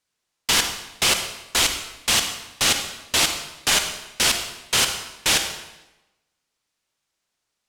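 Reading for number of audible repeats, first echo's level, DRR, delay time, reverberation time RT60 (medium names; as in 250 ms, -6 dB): no echo, no echo, 6.0 dB, no echo, 1.0 s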